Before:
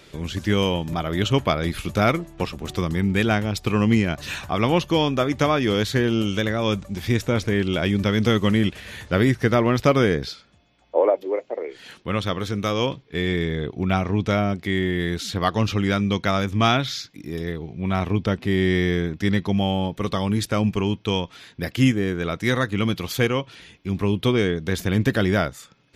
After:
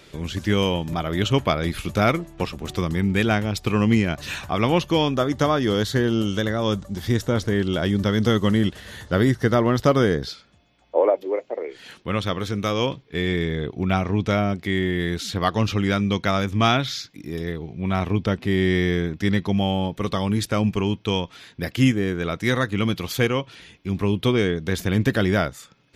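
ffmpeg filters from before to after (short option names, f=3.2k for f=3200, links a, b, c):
-filter_complex "[0:a]asettb=1/sr,asplit=3[a][b][c];[a]atrim=end=5.144[d];[b]atrim=start=5.14:end=10.29,asetpts=PTS-STARTPTS,afade=t=in:d=0.004:c=qsin,afade=t=out:st=5.146:d=0.004:c=qsin,equalizer=f=2.4k:w=5.3:g=-12.5[e];[c]atrim=start=10.286[f];[d][e]acrossfade=d=0.004:c1=hsin:c2=qsin[g];[g][f]acrossfade=d=0.004:c1=qsin:c2=hsin"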